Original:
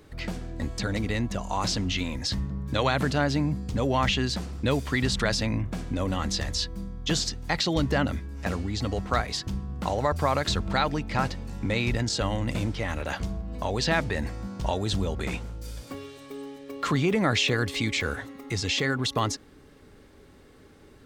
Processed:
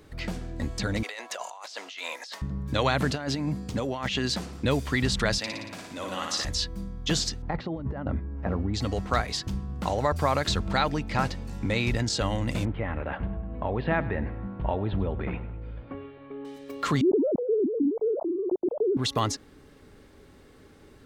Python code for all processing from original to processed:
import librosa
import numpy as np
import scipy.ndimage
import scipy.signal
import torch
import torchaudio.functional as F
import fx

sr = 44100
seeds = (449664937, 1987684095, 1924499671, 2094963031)

y = fx.chain(x, sr, fx.highpass(hz=570.0, slope=24),
    fx.over_compress(threshold_db=-39.0, ratio=-1.0), at=(1.03, 2.42))
y = fx.chain(y, sr, fx.highpass(hz=170.0, slope=6),
    fx.over_compress(threshold_db=-28.0, ratio=-0.5), at=(3.11, 4.65))
y = fx.chain(y, sr, fx.highpass(hz=870.0, slope=6),
    fx.room_flutter(wall_m=9.9, rt60_s=1.0), at=(5.38, 6.45))
y = fx.chain(y, sr, fx.lowpass(hz=1100.0, slope=12),
    fx.over_compress(threshold_db=-28.0, ratio=-0.5), at=(7.42, 8.74))
y = fx.chain(y, sr, fx.bessel_lowpass(hz=1700.0, order=8),
    fx.echo_feedback(ms=100, feedback_pct=47, wet_db=-17), at=(12.65, 16.45))
y = fx.chain(y, sr, fx.sine_speech(),
    fx.gaussian_blur(sigma=18.0),
    fx.env_flatten(amount_pct=70), at=(17.01, 18.97))